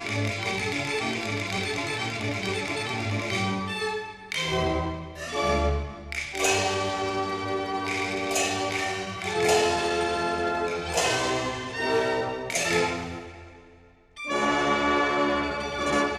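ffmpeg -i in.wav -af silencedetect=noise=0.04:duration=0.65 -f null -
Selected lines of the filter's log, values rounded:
silence_start: 13.18
silence_end: 14.23 | silence_duration: 1.04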